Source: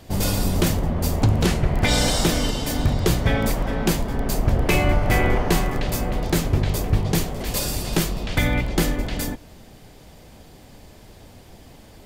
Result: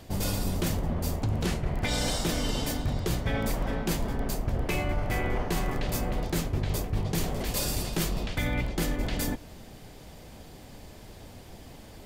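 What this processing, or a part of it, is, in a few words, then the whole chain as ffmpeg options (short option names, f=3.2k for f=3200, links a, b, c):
compression on the reversed sound: -af "areverse,acompressor=threshold=-24dB:ratio=6,areverse,volume=-1dB"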